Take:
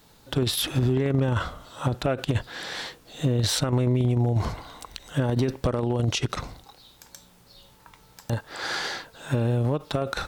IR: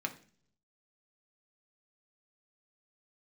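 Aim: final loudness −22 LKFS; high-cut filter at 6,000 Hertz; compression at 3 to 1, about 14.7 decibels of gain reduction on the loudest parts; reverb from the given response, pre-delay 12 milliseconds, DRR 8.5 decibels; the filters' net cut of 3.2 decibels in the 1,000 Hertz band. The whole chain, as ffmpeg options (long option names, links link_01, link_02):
-filter_complex "[0:a]lowpass=6000,equalizer=frequency=1000:width_type=o:gain=-4.5,acompressor=threshold=-40dB:ratio=3,asplit=2[link_01][link_02];[1:a]atrim=start_sample=2205,adelay=12[link_03];[link_02][link_03]afir=irnorm=-1:irlink=0,volume=-11dB[link_04];[link_01][link_04]amix=inputs=2:normalize=0,volume=17.5dB"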